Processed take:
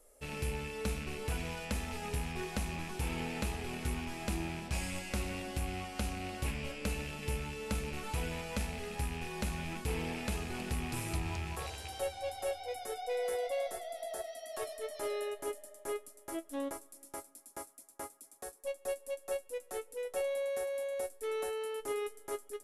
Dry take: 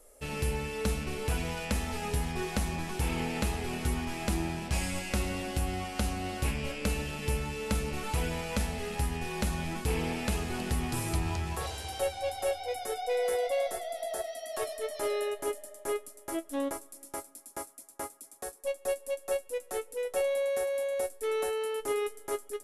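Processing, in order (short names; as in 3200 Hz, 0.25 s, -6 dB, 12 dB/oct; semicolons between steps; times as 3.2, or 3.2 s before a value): rattling part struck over -37 dBFS, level -29 dBFS; gain -5.5 dB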